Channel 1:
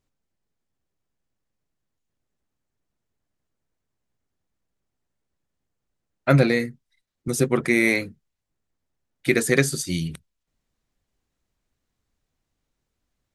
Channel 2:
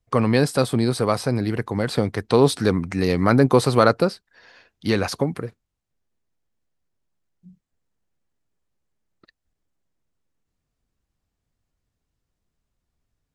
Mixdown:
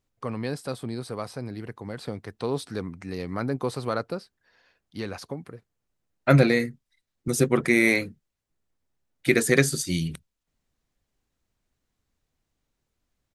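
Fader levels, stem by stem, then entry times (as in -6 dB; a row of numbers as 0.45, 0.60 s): -0.5, -12.5 dB; 0.00, 0.10 s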